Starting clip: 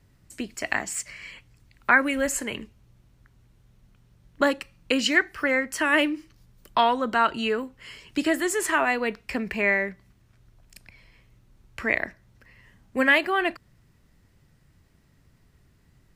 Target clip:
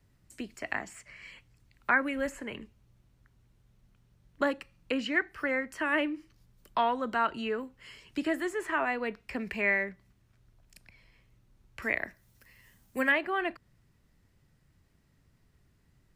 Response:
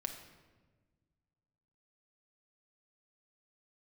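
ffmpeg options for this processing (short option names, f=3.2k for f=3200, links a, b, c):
-filter_complex "[0:a]asettb=1/sr,asplit=3[a][b][c];[a]atrim=end=11.824[d];[b]atrim=start=11.82:end=13.12,asetpts=PTS-STARTPTS,afade=t=in:d=0.004:c=qsin,afade=t=out:st=1.296:d=0.004:c=qsin,aemphasis=mode=production:type=75fm[e];[c]atrim=start=13.116[f];[d][e]acrossfade=d=0.004:c1=hsin:c2=qsin[g];[g][f]acrossfade=d=0.004:c1=qsin:c2=hsin,acrossover=split=250|2800[h][i][j];[j]acompressor=threshold=-44dB:ratio=6[k];[h][i][k]amix=inputs=3:normalize=0,asplit=3[l][m][n];[l]afade=t=out:st=9.39:d=0.02[o];[m]adynamicequalizer=threshold=0.0178:dfrequency=1900:dqfactor=0.7:tfrequency=1900:tqfactor=0.7:attack=5:release=100:ratio=0.375:range=3.5:mode=boostabove:tftype=highshelf,afade=t=in:st=9.39:d=0.02,afade=t=out:st=9.83:d=0.02[p];[n]afade=t=in:st=9.83:d=0.02[q];[o][p][q]amix=inputs=3:normalize=0,volume=-6.5dB"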